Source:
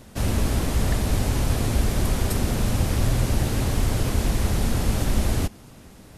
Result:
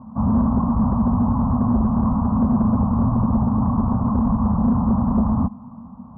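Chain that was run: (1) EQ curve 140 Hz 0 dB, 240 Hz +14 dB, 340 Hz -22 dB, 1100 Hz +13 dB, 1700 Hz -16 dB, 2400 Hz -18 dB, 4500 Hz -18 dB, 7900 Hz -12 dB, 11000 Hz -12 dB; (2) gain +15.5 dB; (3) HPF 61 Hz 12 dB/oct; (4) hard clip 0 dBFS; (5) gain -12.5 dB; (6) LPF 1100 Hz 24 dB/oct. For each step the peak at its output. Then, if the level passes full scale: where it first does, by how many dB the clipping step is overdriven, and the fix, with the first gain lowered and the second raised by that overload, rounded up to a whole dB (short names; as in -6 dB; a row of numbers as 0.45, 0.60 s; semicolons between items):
-7.0, +8.5, +7.0, 0.0, -12.5, -11.5 dBFS; step 2, 7.0 dB; step 2 +8.5 dB, step 5 -5.5 dB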